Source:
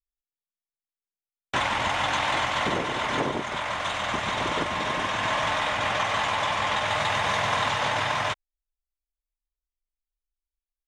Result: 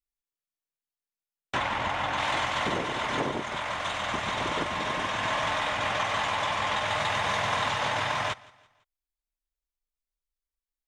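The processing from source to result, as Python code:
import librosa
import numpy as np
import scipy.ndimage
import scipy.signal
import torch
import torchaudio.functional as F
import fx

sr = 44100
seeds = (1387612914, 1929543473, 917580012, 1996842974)

y = fx.high_shelf(x, sr, hz=fx.line((1.55, 5300.0), (2.17, 3300.0)), db=-10.0, at=(1.55, 2.17), fade=0.02)
y = fx.echo_feedback(y, sr, ms=168, feedback_pct=42, wet_db=-23.0)
y = y * librosa.db_to_amplitude(-2.5)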